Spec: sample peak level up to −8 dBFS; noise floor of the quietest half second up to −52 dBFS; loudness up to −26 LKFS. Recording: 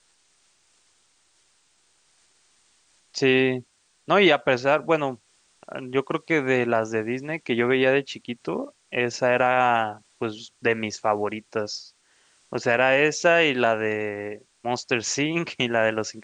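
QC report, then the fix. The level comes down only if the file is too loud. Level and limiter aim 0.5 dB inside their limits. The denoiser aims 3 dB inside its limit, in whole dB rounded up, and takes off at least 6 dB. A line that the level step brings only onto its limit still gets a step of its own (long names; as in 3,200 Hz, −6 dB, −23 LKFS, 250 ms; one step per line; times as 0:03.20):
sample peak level −5.0 dBFS: out of spec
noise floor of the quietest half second −64 dBFS: in spec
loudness −23.5 LKFS: out of spec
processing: level −3 dB
brickwall limiter −8.5 dBFS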